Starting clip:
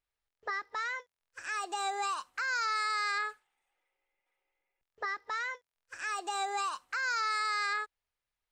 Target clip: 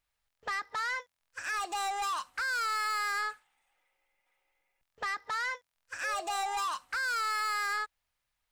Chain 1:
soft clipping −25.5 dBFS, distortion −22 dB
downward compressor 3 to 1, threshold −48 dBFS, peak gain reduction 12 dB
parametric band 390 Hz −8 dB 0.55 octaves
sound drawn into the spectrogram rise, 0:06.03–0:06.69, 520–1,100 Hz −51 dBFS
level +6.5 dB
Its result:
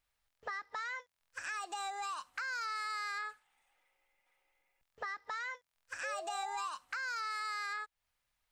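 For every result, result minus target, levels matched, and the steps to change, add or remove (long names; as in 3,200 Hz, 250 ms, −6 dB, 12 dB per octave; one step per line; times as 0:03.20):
downward compressor: peak gain reduction +12 dB; soft clipping: distortion −12 dB
remove: downward compressor 3 to 1, threshold −48 dBFS, peak gain reduction 12 dB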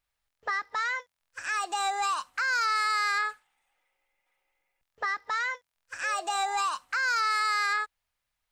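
soft clipping: distortion −12 dB
change: soft clipping −36 dBFS, distortion −10 dB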